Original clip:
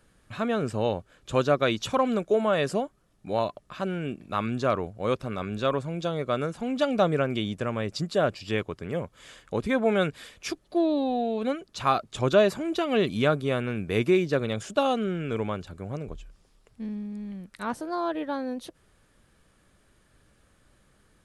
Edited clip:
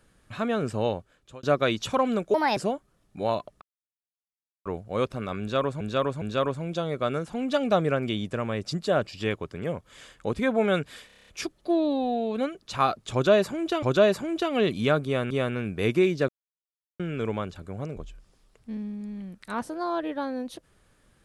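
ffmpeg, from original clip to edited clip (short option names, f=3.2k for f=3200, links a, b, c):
-filter_complex "[0:a]asplit=19[a][b][c][d][e][f][g][h][i][j][k][l][m][n][o][p][q][r][s];[a]atrim=end=1.43,asetpts=PTS-STARTPTS,afade=t=out:st=0.87:d=0.56[t];[b]atrim=start=1.43:end=2.344,asetpts=PTS-STARTPTS,afade=t=in:d=0.004:c=hsin[u];[c]atrim=start=2.34:end=2.66,asetpts=PTS-STARTPTS,asetrate=62622,aresample=44100,atrim=end_sample=9938,asetpts=PTS-STARTPTS[v];[d]atrim=start=2.656:end=3.71,asetpts=PTS-STARTPTS,afade=t=out:st=1.05:d=0.004:c=hsin[w];[e]atrim=start=3.71:end=4.75,asetpts=PTS-STARTPTS,volume=0[x];[f]atrim=start=4.75:end=5.902,asetpts=PTS-STARTPTS,afade=t=in:d=0.004:c=hsin[y];[g]atrim=start=5.488:end=5.902[z];[h]atrim=start=5.488:end=10.372[aa];[i]atrim=start=10.338:end=10.372[ab];[j]atrim=start=10.338:end=10.372[ac];[k]atrim=start=10.338:end=10.372[ad];[l]atrim=start=10.338:end=10.372[ae];[m]atrim=start=10.338:end=10.372[af];[n]atrim=start=10.338:end=10.372[ag];[o]atrim=start=10.338:end=12.892[ah];[p]atrim=start=12.188:end=13.672[ai];[q]atrim=start=13.418:end=14.4,asetpts=PTS-STARTPTS,afade=t=out:st=0.978:d=0.004:c=hsin[aj];[r]atrim=start=14.4:end=15.11,asetpts=PTS-STARTPTS,volume=0[ak];[s]atrim=start=15.11,asetpts=PTS-STARTPTS,afade=t=in:d=0.004:c=hsin[al];[t][u]concat=n=2:v=0:a=1[am];[am][v]acrossfade=d=0.004:c1=hsin:c2=hsin[an];[w][x][y]concat=n=3:v=0:a=1[ao];[an][ao]acrossfade=d=0.004:c1=hsin:c2=hsin[ap];[ap][z]acrossfade=d=0.004:c1=hsin:c2=hsin[aq];[aq][aa]acrossfade=d=0.004:c1=hsin:c2=hsin[ar];[ar][ab]acrossfade=d=0.004:c1=hsin:c2=hsin[as];[as][ac]acrossfade=d=0.004:c1=hsin:c2=hsin[at];[at][ad]acrossfade=d=0.004:c1=hsin:c2=hsin[au];[au][ae]acrossfade=d=0.004:c1=hsin:c2=hsin[av];[av][af]acrossfade=d=0.004:c1=hsin:c2=hsin[aw];[aw][ag]acrossfade=d=0.004:c1=hsin:c2=hsin[ax];[ax][ah]acrossfade=d=0.004:c1=hsin:c2=hsin[ay];[ay][ai]acrossfade=d=0.004:c1=hsin:c2=hsin[az];[aj][ak][al]concat=n=3:v=0:a=1[ba];[az][ba]acrossfade=d=0.004:c1=hsin:c2=hsin"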